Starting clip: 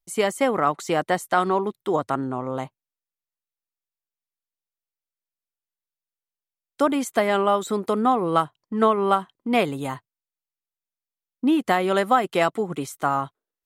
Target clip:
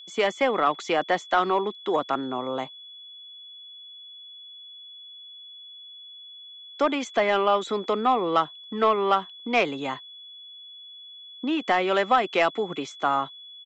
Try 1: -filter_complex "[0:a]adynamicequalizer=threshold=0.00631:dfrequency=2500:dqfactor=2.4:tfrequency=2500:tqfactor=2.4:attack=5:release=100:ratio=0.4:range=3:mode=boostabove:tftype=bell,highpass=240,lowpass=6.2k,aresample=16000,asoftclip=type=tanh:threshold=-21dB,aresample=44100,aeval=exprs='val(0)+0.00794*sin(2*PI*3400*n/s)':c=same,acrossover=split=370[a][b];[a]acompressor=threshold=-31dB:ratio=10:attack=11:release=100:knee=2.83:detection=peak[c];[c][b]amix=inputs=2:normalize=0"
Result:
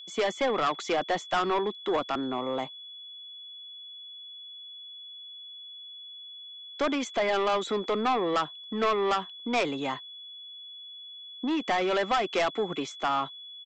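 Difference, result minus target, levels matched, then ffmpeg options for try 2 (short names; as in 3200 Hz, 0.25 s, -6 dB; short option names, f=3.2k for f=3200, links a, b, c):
soft clip: distortion +12 dB
-filter_complex "[0:a]adynamicequalizer=threshold=0.00631:dfrequency=2500:dqfactor=2.4:tfrequency=2500:tqfactor=2.4:attack=5:release=100:ratio=0.4:range=3:mode=boostabove:tftype=bell,highpass=240,lowpass=6.2k,aresample=16000,asoftclip=type=tanh:threshold=-9.5dB,aresample=44100,aeval=exprs='val(0)+0.00794*sin(2*PI*3400*n/s)':c=same,acrossover=split=370[a][b];[a]acompressor=threshold=-31dB:ratio=10:attack=11:release=100:knee=2.83:detection=peak[c];[c][b]amix=inputs=2:normalize=0"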